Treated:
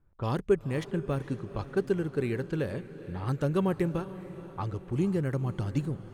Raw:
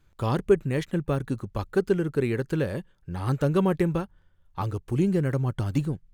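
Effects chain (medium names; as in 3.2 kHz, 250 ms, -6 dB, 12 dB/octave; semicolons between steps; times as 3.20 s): level-controlled noise filter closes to 1.1 kHz, open at -22 dBFS; echo that smears into a reverb 469 ms, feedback 55%, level -14.5 dB; trim -4.5 dB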